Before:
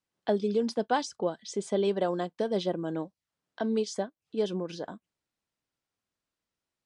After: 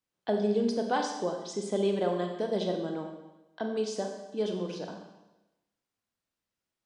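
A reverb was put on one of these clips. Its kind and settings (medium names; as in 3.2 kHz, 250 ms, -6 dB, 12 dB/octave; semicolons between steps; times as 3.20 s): Schroeder reverb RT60 0.99 s, combs from 30 ms, DRR 3 dB; trim -2.5 dB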